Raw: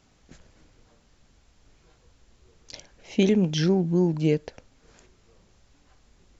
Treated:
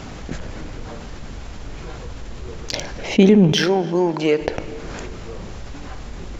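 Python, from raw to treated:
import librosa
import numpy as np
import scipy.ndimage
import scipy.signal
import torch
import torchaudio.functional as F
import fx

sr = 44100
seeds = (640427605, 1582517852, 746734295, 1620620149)

p1 = fx.highpass(x, sr, hz=570.0, slope=12, at=(3.52, 4.41))
p2 = fx.rev_plate(p1, sr, seeds[0], rt60_s=1.9, hf_ratio=0.9, predelay_ms=0, drr_db=18.5)
p3 = np.sign(p2) * np.maximum(np.abs(p2) - 10.0 ** (-35.0 / 20.0), 0.0)
p4 = p2 + F.gain(torch.from_numpy(p3), -4.5).numpy()
p5 = fx.high_shelf(p4, sr, hz=3900.0, db=-10.5)
p6 = fx.env_flatten(p5, sr, amount_pct=50)
y = F.gain(torch.from_numpy(p6), 4.0).numpy()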